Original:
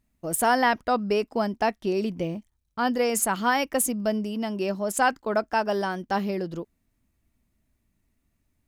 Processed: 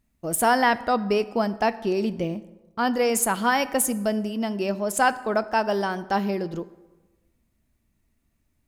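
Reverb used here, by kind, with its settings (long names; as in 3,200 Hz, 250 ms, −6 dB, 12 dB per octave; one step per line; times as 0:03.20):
dense smooth reverb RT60 1.2 s, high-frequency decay 0.6×, DRR 14.5 dB
level +1.5 dB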